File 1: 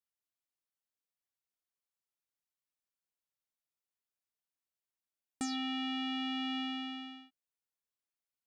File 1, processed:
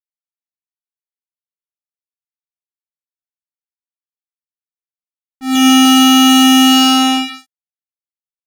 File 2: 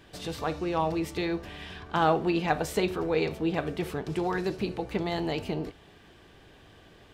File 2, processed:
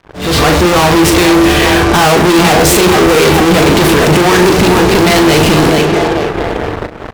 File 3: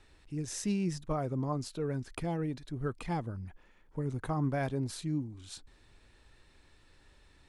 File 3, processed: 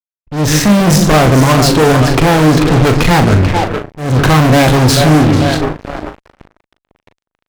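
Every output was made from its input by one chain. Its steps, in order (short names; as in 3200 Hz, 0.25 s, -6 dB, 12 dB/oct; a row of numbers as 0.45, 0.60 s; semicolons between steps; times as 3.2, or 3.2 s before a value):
split-band echo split 360 Hz, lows 0.142 s, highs 0.441 s, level -12 dB; low-pass opened by the level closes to 870 Hz, open at -27.5 dBFS; fuzz box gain 49 dB, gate -53 dBFS; auto swell 0.26 s; doubler 39 ms -8 dB; gain +6 dB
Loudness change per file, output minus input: +28.0, +21.5, +26.0 LU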